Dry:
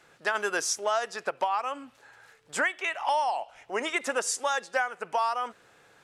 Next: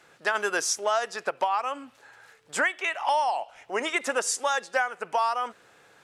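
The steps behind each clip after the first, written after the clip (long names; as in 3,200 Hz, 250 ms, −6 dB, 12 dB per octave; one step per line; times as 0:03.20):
low-shelf EQ 96 Hz −6.5 dB
level +2 dB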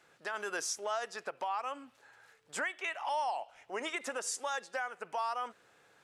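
brickwall limiter −18 dBFS, peak gain reduction 7 dB
level −8 dB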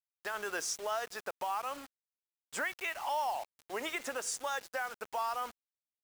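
bit reduction 8 bits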